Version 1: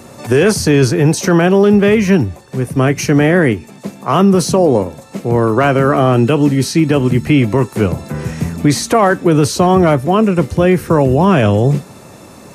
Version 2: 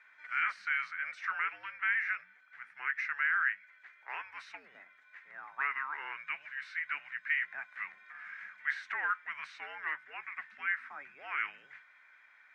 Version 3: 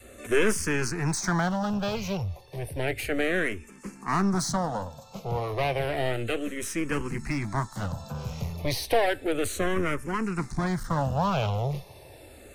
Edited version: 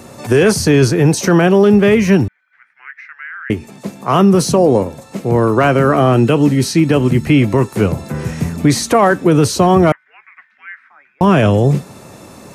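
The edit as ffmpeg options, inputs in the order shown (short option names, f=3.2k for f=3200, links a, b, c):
-filter_complex "[1:a]asplit=2[a][b];[0:a]asplit=3[c][d][e];[c]atrim=end=2.282[f];[a]atrim=start=2.278:end=3.502[g];[d]atrim=start=3.498:end=9.922[h];[b]atrim=start=9.918:end=11.212[i];[e]atrim=start=11.208[j];[f][g]acrossfade=d=0.004:c1=hsin:c2=hsin[k];[k][h]acrossfade=d=0.004:c1=hsin:c2=hsin[l];[l][i]acrossfade=d=0.004:c1=hsin:c2=hsin[m];[m][j]acrossfade=d=0.004:c1=hsin:c2=hsin"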